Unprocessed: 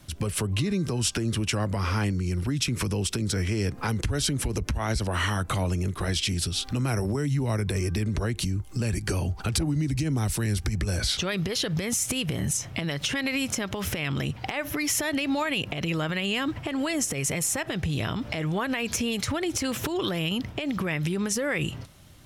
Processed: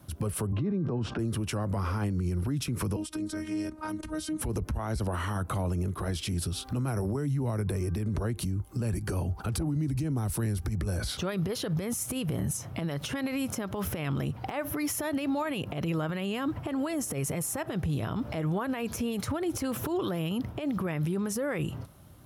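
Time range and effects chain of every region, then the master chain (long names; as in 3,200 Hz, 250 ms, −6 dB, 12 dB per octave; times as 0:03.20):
0:00.52–0:01.19: high-pass filter 130 Hz + head-to-tape spacing loss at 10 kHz 40 dB + envelope flattener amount 70%
0:02.96–0:04.41: low-pass filter 11,000 Hz 24 dB per octave + phases set to zero 310 Hz
whole clip: high-pass filter 50 Hz; flat-topped bell 3,800 Hz −9.5 dB 2.5 octaves; brickwall limiter −23 dBFS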